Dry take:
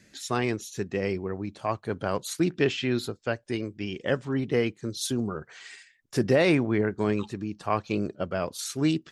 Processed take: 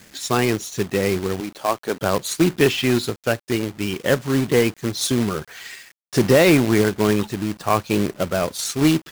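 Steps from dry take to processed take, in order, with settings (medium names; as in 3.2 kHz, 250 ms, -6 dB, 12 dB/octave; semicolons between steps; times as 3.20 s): 1.40–2.02 s: high-pass 270 Hz 12 dB/octave; companded quantiser 4-bit; in parallel at -8 dB: hard clipper -20.5 dBFS, distortion -11 dB; on the sum: trim +5 dB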